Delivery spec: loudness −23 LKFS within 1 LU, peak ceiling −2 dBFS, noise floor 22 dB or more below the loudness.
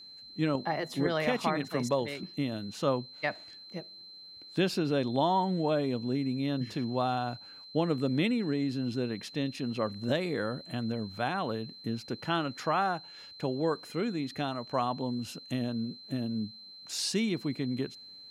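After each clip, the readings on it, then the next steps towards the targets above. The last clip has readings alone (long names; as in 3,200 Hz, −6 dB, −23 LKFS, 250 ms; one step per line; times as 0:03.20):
interfering tone 4,100 Hz; level of the tone −47 dBFS; integrated loudness −32.0 LKFS; sample peak −15.5 dBFS; target loudness −23.0 LKFS
→ notch filter 4,100 Hz, Q 30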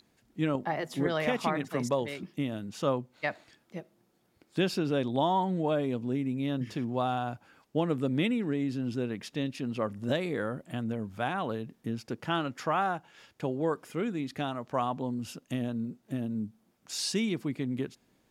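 interfering tone none found; integrated loudness −32.0 LKFS; sample peak −16.0 dBFS; target loudness −23.0 LKFS
→ level +9 dB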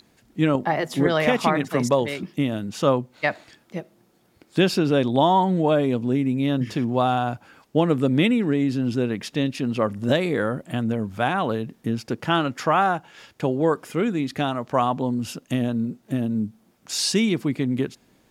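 integrated loudness −23.0 LKFS; sample peak −7.0 dBFS; background noise floor −61 dBFS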